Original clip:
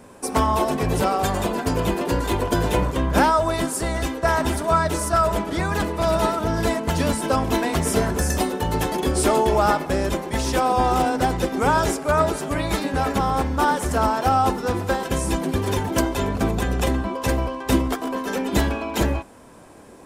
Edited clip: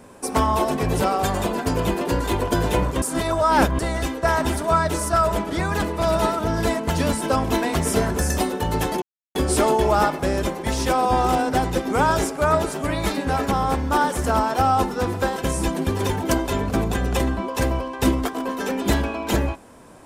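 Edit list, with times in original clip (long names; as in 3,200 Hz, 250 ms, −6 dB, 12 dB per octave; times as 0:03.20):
0:03.02–0:03.79: reverse
0:09.02: splice in silence 0.33 s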